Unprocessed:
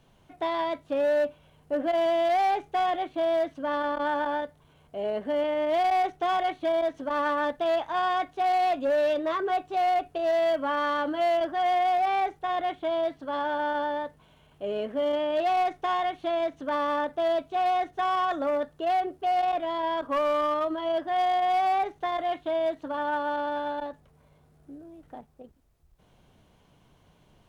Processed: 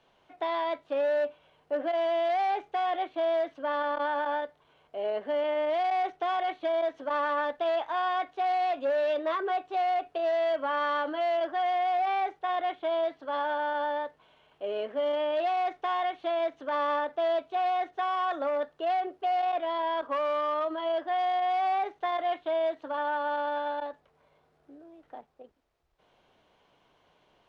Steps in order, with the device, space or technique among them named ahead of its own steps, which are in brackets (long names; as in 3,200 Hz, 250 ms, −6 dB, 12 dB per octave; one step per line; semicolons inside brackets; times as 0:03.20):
DJ mixer with the lows and highs turned down (three-way crossover with the lows and the highs turned down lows −16 dB, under 340 Hz, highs −16 dB, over 5,200 Hz; brickwall limiter −21.5 dBFS, peak gain reduction 4 dB)